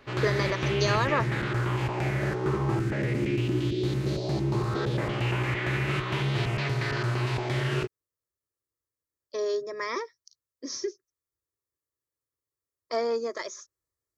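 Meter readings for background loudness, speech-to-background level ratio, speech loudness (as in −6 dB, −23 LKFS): −28.5 LKFS, −2.5 dB, −31.0 LKFS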